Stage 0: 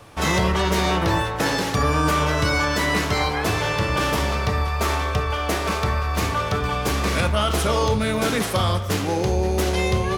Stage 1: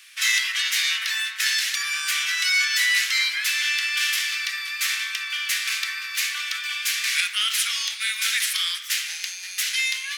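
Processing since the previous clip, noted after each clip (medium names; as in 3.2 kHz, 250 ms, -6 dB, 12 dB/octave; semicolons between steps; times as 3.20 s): steep high-pass 1.8 kHz 36 dB/octave; trim +6 dB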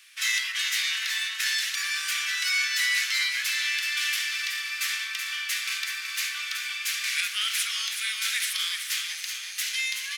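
feedback delay 376 ms, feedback 51%, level -7 dB; trim -5 dB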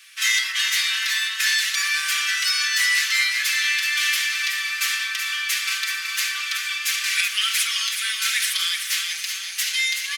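comb 5.2 ms, depth 81%; trim +3.5 dB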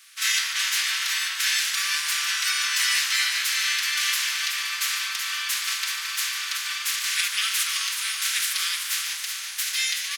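spectral peaks clipped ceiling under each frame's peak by 13 dB; on a send: frequency-shifting echo 147 ms, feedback 35%, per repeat -130 Hz, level -10 dB; on the sum: trim -3 dB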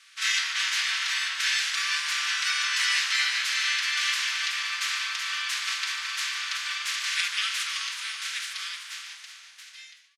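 fade out at the end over 3.07 s; distance through air 75 m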